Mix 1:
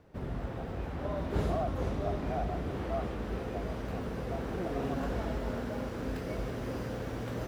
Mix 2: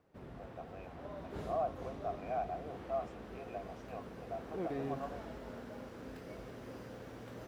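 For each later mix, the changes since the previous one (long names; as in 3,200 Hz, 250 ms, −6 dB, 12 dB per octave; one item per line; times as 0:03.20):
background −10.0 dB
master: add low-shelf EQ 89 Hz −11 dB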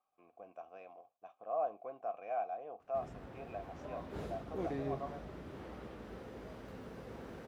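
background: entry +2.80 s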